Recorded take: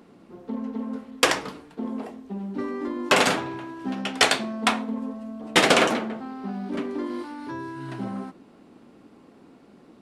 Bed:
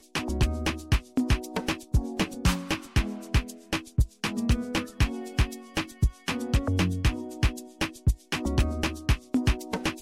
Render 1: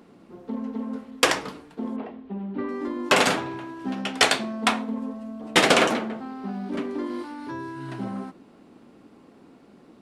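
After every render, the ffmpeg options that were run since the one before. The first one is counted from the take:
ffmpeg -i in.wav -filter_complex "[0:a]asettb=1/sr,asplit=3[link_01][link_02][link_03];[link_01]atrim=end=1.964[link_04];[link_02]atrim=start=1.96:end=2.69,asetpts=PTS-STARTPTS,afade=type=in:duration=0.004:curve=qsin,afade=type=out:start_time=0.726:duration=0.004:curve=qsin,lowpass=frequency=3500:width=0.5412,lowpass=frequency=3500:width=1.3066[link_05];[link_03]atrim=start=2.686[link_06];[link_04][link_05]acrossfade=duration=0.004:curve1=hsin:curve2=qsin[link_07];[link_07][link_06]acrossfade=duration=0.004:curve1=qsin:curve2=hsin" out.wav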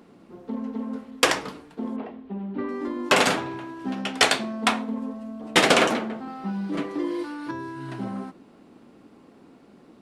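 ffmpeg -i in.wav -filter_complex "[0:a]asettb=1/sr,asplit=3[link_01][link_02][link_03];[link_01]atrim=end=6.274[link_04];[link_02]atrim=start=6.27:end=7.51,asetpts=PTS-STARTPTS,afade=type=in:duration=0.004:curve=qsin,afade=type=out:start_time=1.236:duration=0.004:curve=qsin,aecho=1:1:6.1:0.95,atrim=end_sample=54684[link_05];[link_03]atrim=start=7.506[link_06];[link_04][link_05]acrossfade=duration=0.004:curve1=hsin:curve2=qsin[link_07];[link_07][link_06]acrossfade=duration=0.004:curve1=qsin:curve2=hsin" out.wav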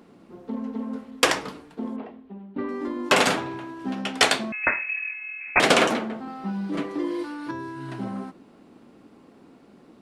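ffmpeg -i in.wav -filter_complex "[0:a]asettb=1/sr,asplit=3[link_01][link_02][link_03];[link_01]atrim=end=4.524[link_04];[link_02]atrim=start=4.52:end=5.6,asetpts=PTS-STARTPTS,afade=type=in:duration=0.004:curve=qsin,afade=type=out:start_time=1.076:duration=0.004:curve=qsin,lowpass=frequency=2400:width_type=q:width=0.5098,lowpass=frequency=2400:width_type=q:width=0.6013,lowpass=frequency=2400:width_type=q:width=0.9,lowpass=frequency=2400:width_type=q:width=2.563,afreqshift=-2800[link_05];[link_03]atrim=start=5.596[link_06];[link_04][link_05]acrossfade=duration=0.004:curve1=hsin:curve2=qsin[link_07];[link_07][link_06]acrossfade=duration=0.004:curve1=qsin:curve2=hsin,asplit=2[link_08][link_09];[link_08]atrim=end=2.56,asetpts=PTS-STARTPTS,afade=type=out:start_time=1.79:duration=0.77:silence=0.223872[link_10];[link_09]atrim=start=2.56,asetpts=PTS-STARTPTS,afade=type=in:duration=0.004:curve=hsin:silence=0.223872[link_11];[link_10][link_11]concat=n=2:v=0:a=1" out.wav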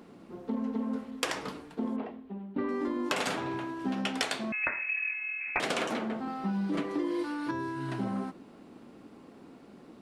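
ffmpeg -i in.wav -af "alimiter=limit=-11dB:level=0:latency=1:release=428,acompressor=threshold=-27dB:ratio=10" out.wav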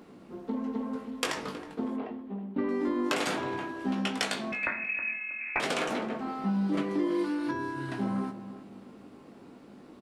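ffmpeg -i in.wav -filter_complex "[0:a]asplit=2[link_01][link_02];[link_02]adelay=20,volume=-7dB[link_03];[link_01][link_03]amix=inputs=2:normalize=0,asplit=2[link_04][link_05];[link_05]adelay=319,lowpass=frequency=1300:poles=1,volume=-12dB,asplit=2[link_06][link_07];[link_07]adelay=319,lowpass=frequency=1300:poles=1,volume=0.37,asplit=2[link_08][link_09];[link_09]adelay=319,lowpass=frequency=1300:poles=1,volume=0.37,asplit=2[link_10][link_11];[link_11]adelay=319,lowpass=frequency=1300:poles=1,volume=0.37[link_12];[link_04][link_06][link_08][link_10][link_12]amix=inputs=5:normalize=0" out.wav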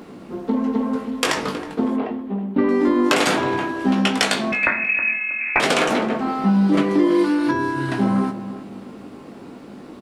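ffmpeg -i in.wav -af "volume=12dB,alimiter=limit=-2dB:level=0:latency=1" out.wav

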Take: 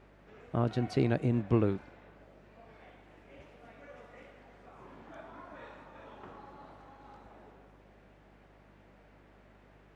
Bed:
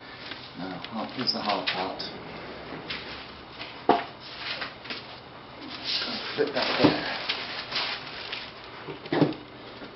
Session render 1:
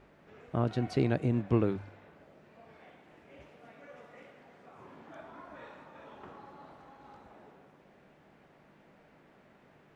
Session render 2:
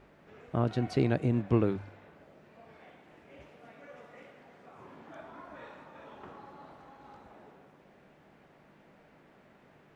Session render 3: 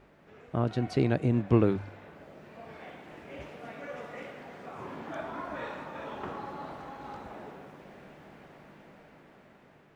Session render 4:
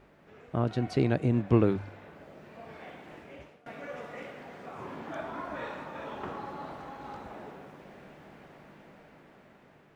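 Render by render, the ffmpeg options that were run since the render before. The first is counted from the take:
ffmpeg -i in.wav -af "bandreject=frequency=50:width_type=h:width=4,bandreject=frequency=100:width_type=h:width=4" out.wav
ffmpeg -i in.wav -af "volume=1dB" out.wav
ffmpeg -i in.wav -af "dynaudnorm=framelen=610:gausssize=7:maxgain=10dB" out.wav
ffmpeg -i in.wav -filter_complex "[0:a]asplit=2[link_01][link_02];[link_01]atrim=end=3.66,asetpts=PTS-STARTPTS,afade=type=out:start_time=3.14:duration=0.52:silence=0.0794328[link_03];[link_02]atrim=start=3.66,asetpts=PTS-STARTPTS,afade=type=in:duration=0.004:curve=hsin:silence=0.0794328[link_04];[link_03][link_04]concat=n=2:v=0:a=1" out.wav

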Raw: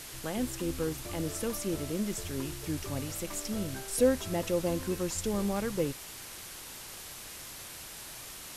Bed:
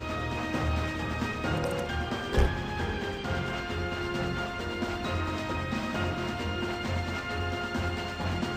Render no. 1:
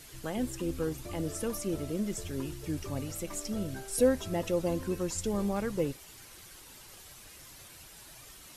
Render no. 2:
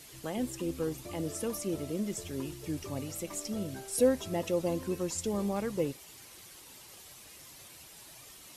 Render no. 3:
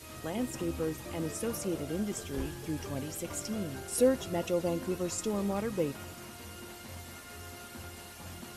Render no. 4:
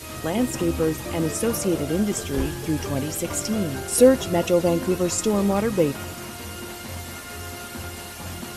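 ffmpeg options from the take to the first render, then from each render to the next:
ffmpeg -i in.wav -af "afftdn=noise_reduction=9:noise_floor=-45" out.wav
ffmpeg -i in.wav -af "highpass=frequency=120:poles=1,equalizer=frequency=1500:width_type=o:width=0.46:gain=-4.5" out.wav
ffmpeg -i in.wav -i bed.wav -filter_complex "[1:a]volume=-15.5dB[link_01];[0:a][link_01]amix=inputs=2:normalize=0" out.wav
ffmpeg -i in.wav -af "volume=11dB" out.wav

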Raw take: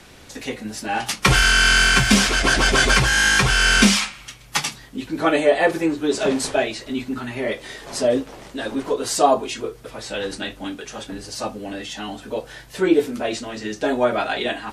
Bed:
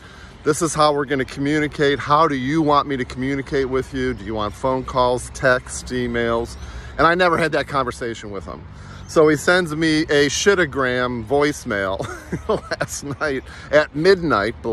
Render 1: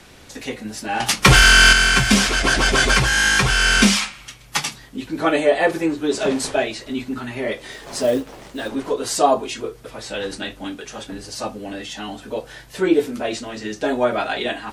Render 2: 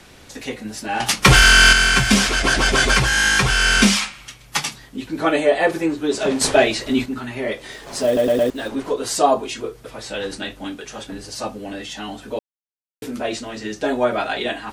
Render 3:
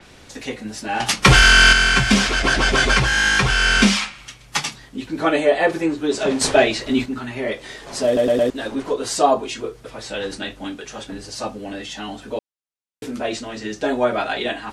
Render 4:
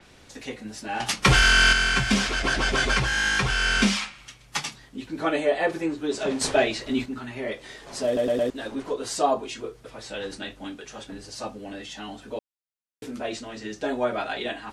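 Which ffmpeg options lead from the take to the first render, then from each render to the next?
ffmpeg -i in.wav -filter_complex "[0:a]asettb=1/sr,asplit=3[link_01][link_02][link_03];[link_01]atrim=end=1.004[link_04];[link_02]atrim=start=1:end=1.73,asetpts=PTS-STARTPTS,afade=type=in:duration=0.004:curve=qsin,afade=type=out:start_time=0.726:duration=0.004:curve=qsin,acontrast=59[link_05];[link_03]atrim=start=1.726[link_06];[link_04][link_05]acrossfade=duration=0.004:curve1=hsin:curve2=qsin[link_07];[link_07][link_06]acrossfade=duration=0.004:curve1=qsin:curve2=hsin,asettb=1/sr,asplit=3[link_08][link_09][link_10];[link_08]atrim=end=7.724[link_11];[link_09]atrim=start=7.72:end=8.69,asetpts=PTS-STARTPTS,afade=type=in:duration=0.004:curve=qsin,afade=type=out:start_time=0.966:duration=0.004:curve=qsin,acrusher=bits=6:mode=log:mix=0:aa=0.000001[link_12];[link_10]atrim=start=8.686[link_13];[link_11][link_12]acrossfade=duration=0.004:curve1=hsin:curve2=qsin[link_14];[link_14][link_13]acrossfade=duration=0.004:curve1=qsin:curve2=hsin" out.wav
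ffmpeg -i in.wav -filter_complex "[0:a]asettb=1/sr,asplit=3[link_01][link_02][link_03];[link_01]atrim=end=6.414[link_04];[link_02]atrim=start=6.41:end=7.06,asetpts=PTS-STARTPTS,afade=type=in:duration=0.004:curve=qsin,afade=type=out:start_time=0.646:duration=0.004:curve=qsin,acontrast=89[link_05];[link_03]atrim=start=7.056[link_06];[link_04][link_05]acrossfade=duration=0.004:curve1=hsin:curve2=qsin[link_07];[link_07][link_06]acrossfade=duration=0.004:curve1=qsin:curve2=hsin,asplit=7[link_08][link_09][link_10][link_11][link_12][link_13][link_14];[link_08]atrim=end=8.172[link_15];[link_09]atrim=start=8.058:end=8.172[link_16];[link_10]atrim=start=8.058:end=8.172[link_17];[link_11]atrim=start=8.058:end=8.172[link_18];[link_12]atrim=start=8.498:end=12.39,asetpts=PTS-STARTPTS,afade=type=out:start_time=3.888:duration=0.004:curve=hsin[link_19];[link_13]atrim=start=12.39:end=13.02,asetpts=PTS-STARTPTS,volume=0[link_20];[link_14]atrim=start=13.02,asetpts=PTS-STARTPTS,afade=type=in:duration=0.004:curve=hsin[link_21];[link_15][link_16]acrossfade=duration=0.004:curve1=hsin:curve2=hsin[link_22];[link_22][link_17]acrossfade=duration=0.004:curve1=hsin:curve2=hsin[link_23];[link_23][link_18]acrossfade=duration=0.004:curve1=hsin:curve2=hsin[link_24];[link_19][link_20][link_21]concat=n=3:v=0:a=1[link_25];[link_24][link_25]acrossfade=duration=0.004:curve1=hsin:curve2=hsin" out.wav
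ffmpeg -i in.wav -af "lowpass=10000,adynamicequalizer=threshold=0.0282:dfrequency=5500:dqfactor=0.7:tfrequency=5500:tqfactor=0.7:attack=5:release=100:ratio=0.375:range=2.5:mode=cutabove:tftype=highshelf" out.wav
ffmpeg -i in.wav -af "volume=-6.5dB" out.wav

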